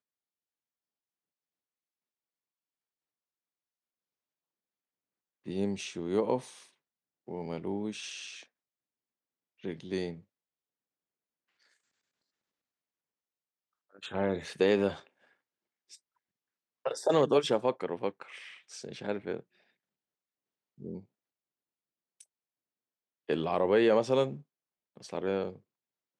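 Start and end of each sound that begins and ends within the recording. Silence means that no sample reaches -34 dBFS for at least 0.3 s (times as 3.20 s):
5.48–6.39 s
7.29–8.28 s
9.65–10.12 s
14.04–14.93 s
16.86–18.22 s
18.78–19.40 s
20.85–20.97 s
23.29–24.33 s
25.13–25.50 s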